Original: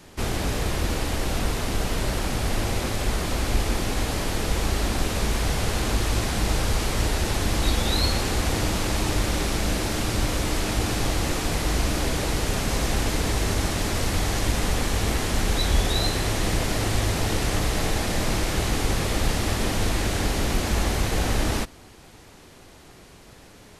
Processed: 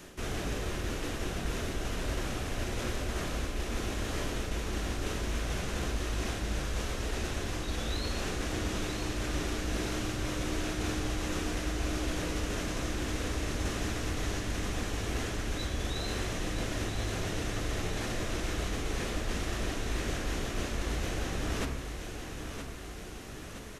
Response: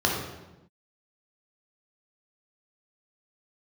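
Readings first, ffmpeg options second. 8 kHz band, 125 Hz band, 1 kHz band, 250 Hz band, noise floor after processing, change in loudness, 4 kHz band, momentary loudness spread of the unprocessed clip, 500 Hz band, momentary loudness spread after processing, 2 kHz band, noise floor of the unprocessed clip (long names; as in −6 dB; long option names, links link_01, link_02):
−10.5 dB, −9.5 dB, −10.5 dB, −7.5 dB, −42 dBFS, −9.5 dB, −10.0 dB, 3 LU, −8.0 dB, 2 LU, −8.0 dB, −48 dBFS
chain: -filter_complex "[0:a]bandreject=frequency=66.75:width_type=h:width=4,bandreject=frequency=133.5:width_type=h:width=4,bandreject=frequency=200.25:width_type=h:width=4,bandreject=frequency=267:width_type=h:width=4,bandreject=frequency=333.75:width_type=h:width=4,bandreject=frequency=400.5:width_type=h:width=4,bandreject=frequency=467.25:width_type=h:width=4,bandreject=frequency=534:width_type=h:width=4,bandreject=frequency=600.75:width_type=h:width=4,bandreject=frequency=667.5:width_type=h:width=4,bandreject=frequency=734.25:width_type=h:width=4,bandreject=frequency=801:width_type=h:width=4,bandreject=frequency=867.75:width_type=h:width=4,bandreject=frequency=934.5:width_type=h:width=4,bandreject=frequency=1001.25:width_type=h:width=4,bandreject=frequency=1068:width_type=h:width=4,bandreject=frequency=1134.75:width_type=h:width=4,bandreject=frequency=1201.5:width_type=h:width=4,bandreject=frequency=1268.25:width_type=h:width=4,bandreject=frequency=1335:width_type=h:width=4,bandreject=frequency=1401.75:width_type=h:width=4,bandreject=frequency=1468.5:width_type=h:width=4,bandreject=frequency=1535.25:width_type=h:width=4,bandreject=frequency=1602:width_type=h:width=4,bandreject=frequency=1668.75:width_type=h:width=4,bandreject=frequency=1735.5:width_type=h:width=4,bandreject=frequency=1802.25:width_type=h:width=4,bandreject=frequency=1869:width_type=h:width=4,bandreject=frequency=1935.75:width_type=h:width=4,bandreject=frequency=2002.5:width_type=h:width=4,bandreject=frequency=2069.25:width_type=h:width=4,bandreject=frequency=2136:width_type=h:width=4,bandreject=frequency=2202.75:width_type=h:width=4,bandreject=frequency=2269.5:width_type=h:width=4,bandreject=frequency=2336.25:width_type=h:width=4,bandreject=frequency=2403:width_type=h:width=4,bandreject=frequency=2469.75:width_type=h:width=4,acrossover=split=7800[link_01][link_02];[link_02]acompressor=threshold=-45dB:ratio=4:attack=1:release=60[link_03];[link_01][link_03]amix=inputs=2:normalize=0,equalizer=frequency=860:width=2.5:gain=-6.5,areverse,acompressor=threshold=-31dB:ratio=12,areverse,aecho=1:1:971|1942|2913|3884|4855|5826:0.398|0.207|0.108|0.056|0.0291|0.0151,asplit=2[link_04][link_05];[1:a]atrim=start_sample=2205,atrim=end_sample=6615[link_06];[link_05][link_06]afir=irnorm=-1:irlink=0,volume=-19.5dB[link_07];[link_04][link_07]amix=inputs=2:normalize=0"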